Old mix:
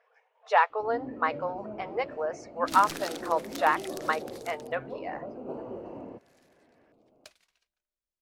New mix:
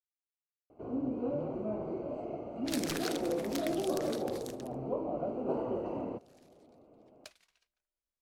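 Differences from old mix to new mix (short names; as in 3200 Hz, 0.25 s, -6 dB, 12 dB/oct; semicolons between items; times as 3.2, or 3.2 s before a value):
speech: muted; first sound +4.5 dB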